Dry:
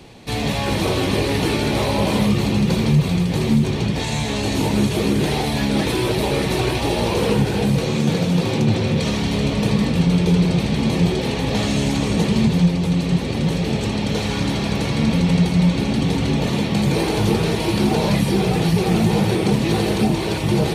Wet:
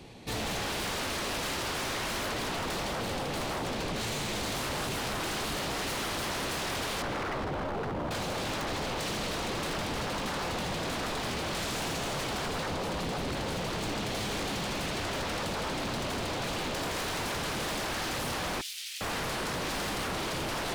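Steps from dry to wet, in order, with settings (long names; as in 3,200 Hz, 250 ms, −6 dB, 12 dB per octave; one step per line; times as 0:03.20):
0:07.02–0:08.11: expanding power law on the bin magnitudes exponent 2.3
on a send: tape delay 215 ms, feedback 90%, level −9.5 dB, low-pass 4,600 Hz
on the sum: wave folding −22.5 dBFS
0:18.61–0:19.01: inverse Chebyshev high-pass filter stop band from 780 Hz, stop band 60 dB
level −6 dB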